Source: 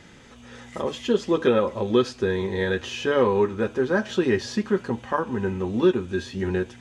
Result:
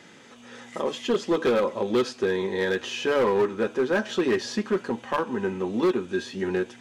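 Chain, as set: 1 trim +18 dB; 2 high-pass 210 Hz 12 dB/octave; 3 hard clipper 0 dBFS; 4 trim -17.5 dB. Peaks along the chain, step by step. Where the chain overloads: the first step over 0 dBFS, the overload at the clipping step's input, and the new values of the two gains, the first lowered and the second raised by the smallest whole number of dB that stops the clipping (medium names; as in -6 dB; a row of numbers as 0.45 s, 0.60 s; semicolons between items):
+10.5 dBFS, +9.5 dBFS, 0.0 dBFS, -17.5 dBFS; step 1, 9.5 dB; step 1 +8 dB, step 4 -7.5 dB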